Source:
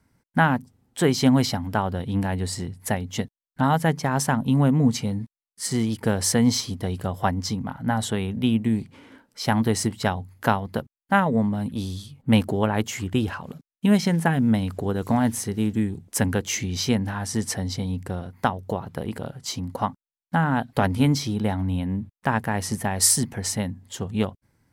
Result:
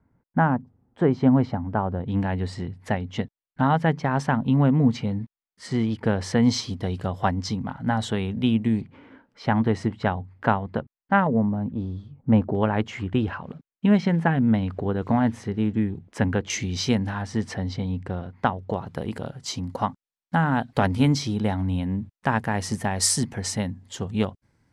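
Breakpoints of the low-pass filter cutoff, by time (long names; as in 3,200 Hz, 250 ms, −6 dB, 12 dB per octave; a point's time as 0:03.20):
1,200 Hz
from 0:02.08 3,100 Hz
from 0:06.43 5,300 Hz
from 0:08.81 2,300 Hz
from 0:11.27 1,100 Hz
from 0:12.55 2,700 Hz
from 0:16.50 6,400 Hz
from 0:17.22 3,300 Hz
from 0:18.74 7,600 Hz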